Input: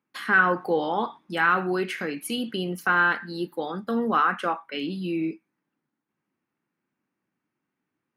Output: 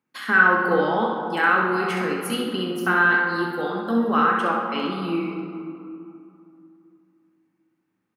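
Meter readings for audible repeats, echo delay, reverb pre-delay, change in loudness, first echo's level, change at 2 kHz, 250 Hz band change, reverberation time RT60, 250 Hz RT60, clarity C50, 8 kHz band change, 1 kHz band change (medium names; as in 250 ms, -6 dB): 1, 65 ms, 4 ms, +4.0 dB, -6.0 dB, +4.5 dB, +4.5 dB, 2.7 s, 3.1 s, 1.0 dB, +2.0 dB, +3.5 dB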